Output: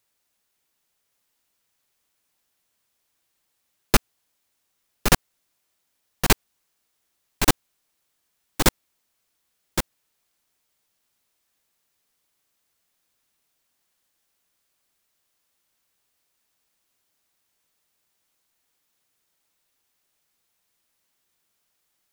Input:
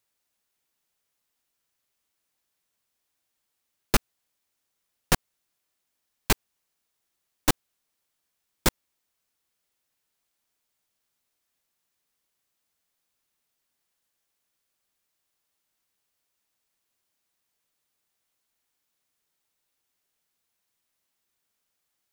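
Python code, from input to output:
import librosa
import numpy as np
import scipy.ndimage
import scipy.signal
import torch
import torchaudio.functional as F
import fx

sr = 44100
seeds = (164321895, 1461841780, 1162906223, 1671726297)

y = x + 10.0 ** (-6.5 / 20.0) * np.pad(x, (int(1117 * sr / 1000.0), 0))[:len(x)]
y = F.gain(torch.from_numpy(y), 4.5).numpy()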